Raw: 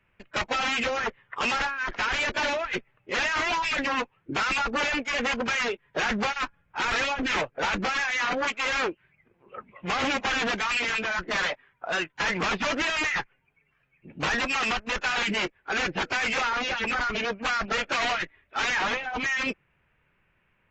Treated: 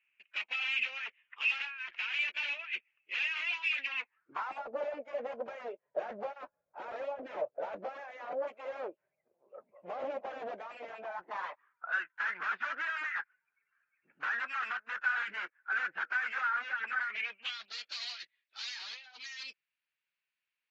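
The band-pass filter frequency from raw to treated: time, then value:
band-pass filter, Q 5.5
3.96 s 2.6 kHz
4.64 s 600 Hz
10.83 s 600 Hz
11.95 s 1.5 kHz
16.92 s 1.5 kHz
17.74 s 4.4 kHz

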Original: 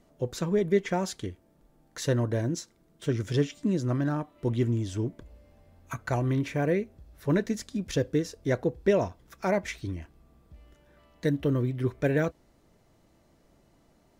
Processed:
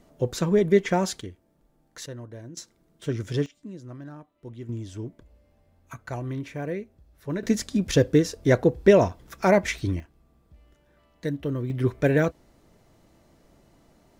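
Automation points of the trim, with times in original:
+5 dB
from 1.21 s -3 dB
from 2.06 s -13 dB
from 2.57 s -0.5 dB
from 3.46 s -13 dB
from 4.69 s -5 dB
from 7.43 s +7.5 dB
from 10.00 s -2.5 dB
from 11.70 s +4.5 dB

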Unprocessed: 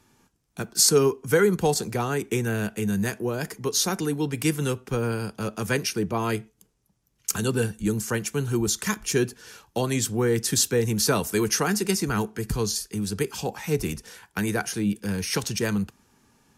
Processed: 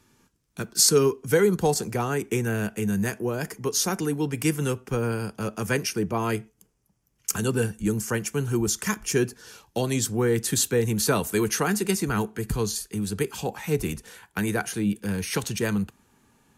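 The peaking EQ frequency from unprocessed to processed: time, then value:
peaking EQ -7 dB 0.38 oct
1.17 s 760 Hz
1.78 s 3.9 kHz
9.26 s 3.9 kHz
9.80 s 950 Hz
10.23 s 5.3 kHz

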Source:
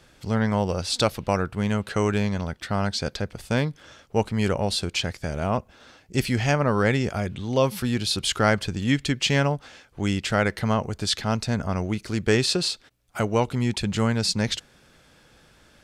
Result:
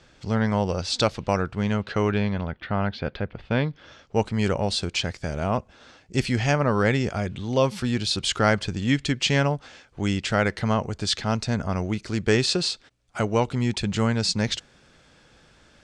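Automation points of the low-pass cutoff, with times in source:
low-pass 24 dB/octave
1.44 s 7.4 kHz
2.60 s 3.2 kHz
3.44 s 3.2 kHz
4.27 s 8.4 kHz

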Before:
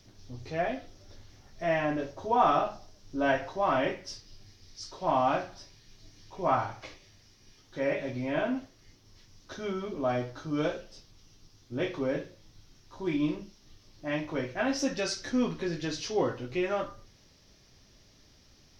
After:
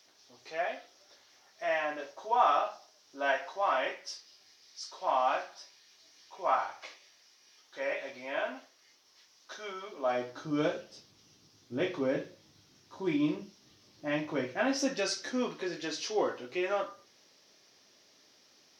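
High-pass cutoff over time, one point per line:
9.93 s 670 Hz
10.50 s 160 Hz
14.34 s 160 Hz
15.52 s 370 Hz

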